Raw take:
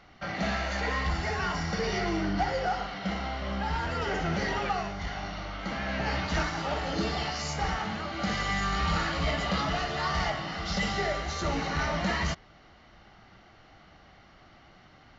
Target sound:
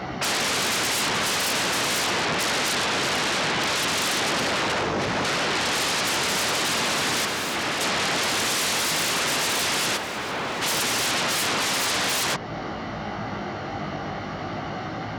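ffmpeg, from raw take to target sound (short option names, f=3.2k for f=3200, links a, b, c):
-filter_complex "[0:a]flanger=delay=16:depth=3.9:speed=0.18,asplit=2[a][b];[b]adynamicsmooth=sensitivity=2.5:basefreq=1.6k,volume=2dB[c];[a][c]amix=inputs=2:normalize=0,alimiter=limit=-23dB:level=0:latency=1:release=292,asettb=1/sr,asplit=3[d][e][f];[d]atrim=end=4.404[g];[e]atrim=start=4.4:end=5.25,asetpts=PTS-STARTPTS,afade=t=in:d=0.004:c=qsin,afade=t=out:st=0.846:d=0.004:c=qsin,equalizer=f=1.1k:w=0.42:g=-8[h];[f]atrim=start=5.246[i];[g][h]acrossfade=d=0.004:c1=hsin:c2=qsin[j];[j][i]acrossfade=d=0.004:c1=qsin:c2=hsin,aeval=exprs='0.0708*sin(PI/2*7.94*val(0)/0.0708)':c=same,asettb=1/sr,asplit=3[k][l][m];[k]atrim=end=7.254[n];[l]atrim=start=7.25:end=7.81,asetpts=PTS-STARTPTS,afade=t=in:d=0.004:c=qsin,afade=t=out:st=0.556:d=0.004:c=qsin,highshelf=f=5.3k:g=-11.5[o];[m]atrim=start=7.806[p];[n][o]acrossfade=d=0.004:c1=hsin:c2=qsin[q];[q][p]acrossfade=d=0.004:c1=qsin:c2=hsin,asplit=3[r][s][t];[r]afade=t=out:st=9.96:d=0.02[u];[s]asplit=2[v][w];[w]highpass=f=720:p=1,volume=15dB,asoftclip=type=tanh:threshold=-22.5dB[x];[v][x]amix=inputs=2:normalize=0,lowpass=f=1.1k:p=1,volume=-6dB,afade=t=in:st=9.96:d=0.02,afade=t=out:st=10.61:d=0.02[y];[t]afade=t=in:st=10.61:d=0.02[z];[u][y][z]amix=inputs=3:normalize=0,highpass=120,volume=2dB"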